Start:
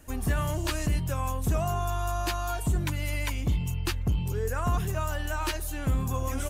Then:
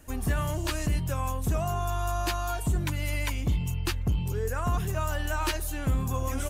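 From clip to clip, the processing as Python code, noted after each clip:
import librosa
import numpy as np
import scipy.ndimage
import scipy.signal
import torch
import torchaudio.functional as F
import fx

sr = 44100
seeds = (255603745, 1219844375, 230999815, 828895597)

y = fx.rider(x, sr, range_db=10, speed_s=0.5)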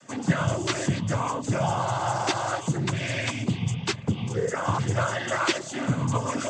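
y = fx.noise_vocoder(x, sr, seeds[0], bands=16)
y = F.gain(torch.from_numpy(y), 6.0).numpy()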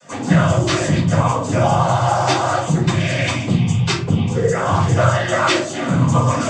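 y = fx.room_shoebox(x, sr, seeds[1], volume_m3=210.0, walls='furnished', distance_m=5.0)
y = F.gain(torch.from_numpy(y), -1.0).numpy()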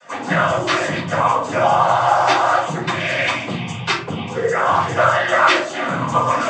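y = fx.bandpass_q(x, sr, hz=1400.0, q=0.67)
y = F.gain(torch.from_numpy(y), 5.0).numpy()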